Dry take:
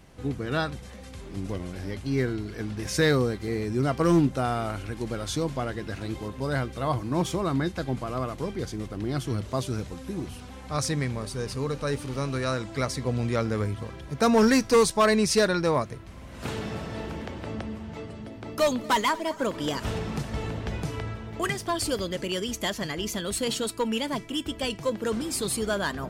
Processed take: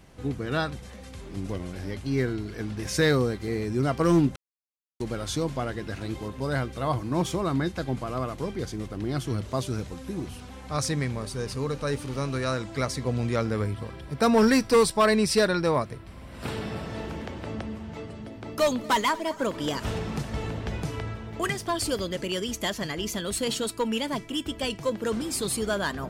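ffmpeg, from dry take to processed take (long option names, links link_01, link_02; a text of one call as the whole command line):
ffmpeg -i in.wav -filter_complex "[0:a]asettb=1/sr,asplit=3[link_01][link_02][link_03];[link_01]atrim=end=13.504[link_04];[link_02]atrim=start=13.5:end=16.87,asetpts=PTS-STARTPTS,afade=type=in:duration=0.004:curve=qsin,afade=type=out:start_time=3.366:duration=0.004:curve=qsin,bandreject=frequency=6500:width=5.4[link_05];[link_03]atrim=start=16.866[link_06];[link_04][link_05]acrossfade=duration=0.004:curve1=hsin:curve2=qsin[link_07];[link_07][link_06]acrossfade=duration=0.004:curve1=qsin:curve2=hsin,asplit=3[link_08][link_09][link_10];[link_08]atrim=end=4.36,asetpts=PTS-STARTPTS,afade=type=out:start_time=4.356:duration=0.004:curve=hsin[link_11];[link_09]atrim=start=4.36:end=5,asetpts=PTS-STARTPTS,volume=0[link_12];[link_10]atrim=start=5,asetpts=PTS-STARTPTS,afade=type=in:duration=0.004:curve=hsin[link_13];[link_11][link_12][link_13]concat=n=3:v=0:a=1" out.wav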